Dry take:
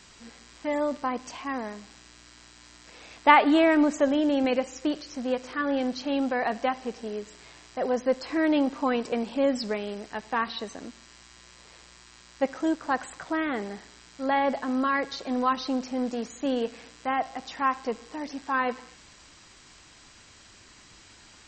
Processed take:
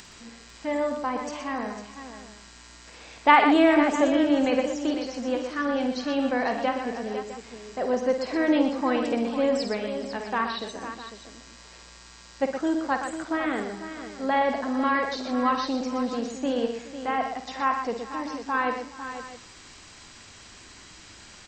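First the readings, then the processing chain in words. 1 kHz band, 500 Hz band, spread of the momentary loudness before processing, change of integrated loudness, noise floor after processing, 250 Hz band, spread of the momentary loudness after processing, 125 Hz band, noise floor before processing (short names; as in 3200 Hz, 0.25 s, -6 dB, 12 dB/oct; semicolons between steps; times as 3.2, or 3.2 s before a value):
+1.5 dB, +1.5 dB, 13 LU, +1.5 dB, -49 dBFS, +1.5 dB, 19 LU, n/a, -53 dBFS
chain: upward compressor, threshold -43 dBFS; on a send: tapped delay 52/65/121/422/500/654 ms -9/-16.5/-7.5/-19.5/-10.5/-16 dB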